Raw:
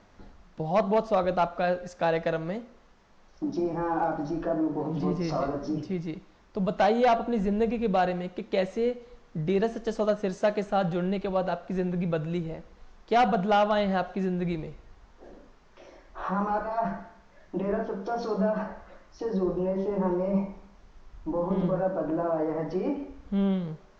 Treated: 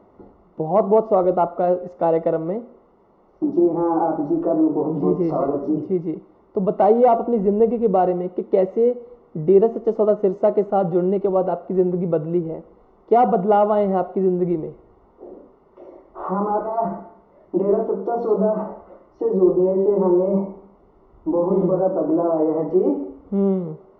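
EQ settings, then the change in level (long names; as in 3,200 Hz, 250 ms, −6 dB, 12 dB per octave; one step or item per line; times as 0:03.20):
Savitzky-Golay smoothing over 65 samples
high-pass filter 160 Hz 6 dB per octave
parametric band 380 Hz +8.5 dB 0.66 octaves
+6.0 dB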